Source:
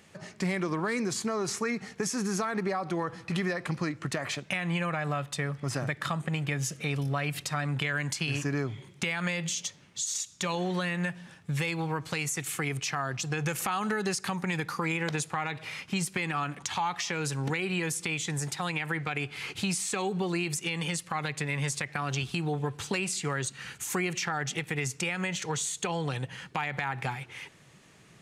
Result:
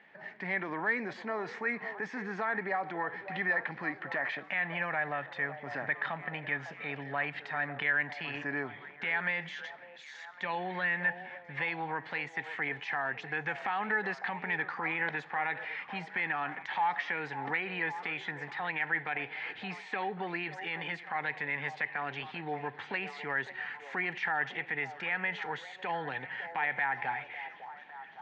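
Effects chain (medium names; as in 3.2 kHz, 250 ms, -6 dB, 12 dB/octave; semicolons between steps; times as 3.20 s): transient shaper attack -4 dB, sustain +3 dB; cabinet simulation 350–2800 Hz, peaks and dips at 360 Hz -6 dB, 520 Hz -5 dB, 850 Hz +4 dB, 1.2 kHz -8 dB, 1.8 kHz +8 dB, 2.7 kHz -5 dB; repeats whose band climbs or falls 554 ms, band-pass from 600 Hz, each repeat 0.7 oct, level -9 dB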